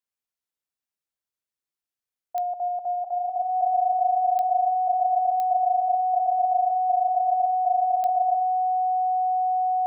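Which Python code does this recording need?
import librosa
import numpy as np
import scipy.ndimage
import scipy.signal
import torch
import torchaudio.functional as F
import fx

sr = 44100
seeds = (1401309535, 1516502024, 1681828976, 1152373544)

y = fx.fix_declick_ar(x, sr, threshold=10.0)
y = fx.notch(y, sr, hz=740.0, q=30.0)
y = fx.fix_echo_inverse(y, sr, delay_ms=82, level_db=-12.5)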